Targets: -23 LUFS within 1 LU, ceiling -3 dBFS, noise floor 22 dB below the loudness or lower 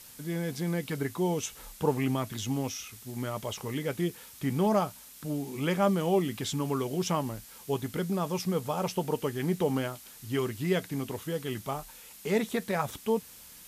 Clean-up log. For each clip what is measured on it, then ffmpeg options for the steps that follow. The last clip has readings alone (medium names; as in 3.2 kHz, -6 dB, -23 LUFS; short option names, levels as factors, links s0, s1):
noise floor -50 dBFS; noise floor target -54 dBFS; loudness -31.5 LUFS; peak level -13.0 dBFS; loudness target -23.0 LUFS
-> -af "afftdn=nr=6:nf=-50"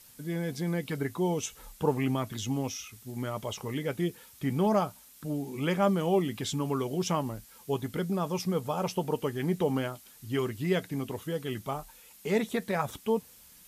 noise floor -55 dBFS; loudness -31.5 LUFS; peak level -13.0 dBFS; loudness target -23.0 LUFS
-> -af "volume=2.66"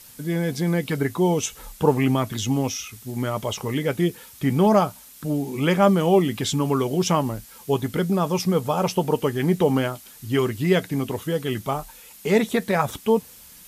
loudness -23.0 LUFS; peak level -4.5 dBFS; noise floor -46 dBFS